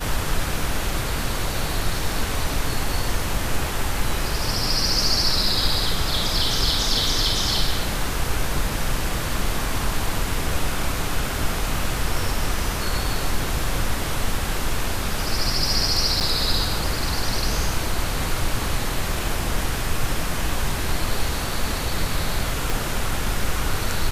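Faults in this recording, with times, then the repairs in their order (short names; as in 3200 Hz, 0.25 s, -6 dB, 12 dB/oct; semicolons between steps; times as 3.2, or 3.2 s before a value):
16.2–16.21 gap 8.1 ms
22.7 pop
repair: de-click; interpolate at 16.2, 8.1 ms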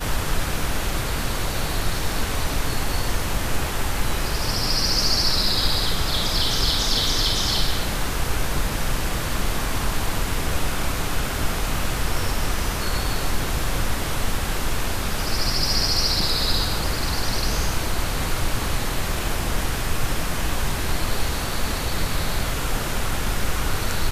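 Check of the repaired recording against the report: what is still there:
22.7 pop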